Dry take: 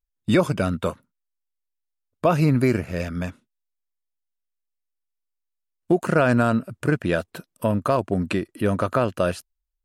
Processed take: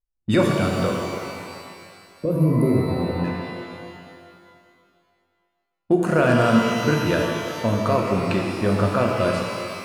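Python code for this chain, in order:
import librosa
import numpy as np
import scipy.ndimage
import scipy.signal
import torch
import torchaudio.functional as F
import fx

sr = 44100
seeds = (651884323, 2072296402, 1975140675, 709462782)

y = fx.spec_box(x, sr, start_s=0.91, length_s=2.33, low_hz=600.0, high_hz=9100.0, gain_db=-22)
y = fx.env_lowpass(y, sr, base_hz=1000.0, full_db=-17.5)
y = fx.rev_shimmer(y, sr, seeds[0], rt60_s=2.2, semitones=12, shimmer_db=-8, drr_db=0.0)
y = y * librosa.db_to_amplitude(-1.5)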